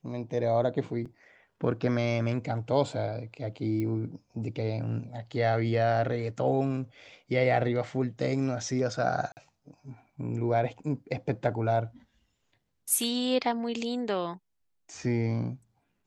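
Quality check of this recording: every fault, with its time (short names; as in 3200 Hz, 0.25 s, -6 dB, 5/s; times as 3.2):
1.05–1.06 gap 5.9 ms
3.8 pop -22 dBFS
9.32–9.37 gap 49 ms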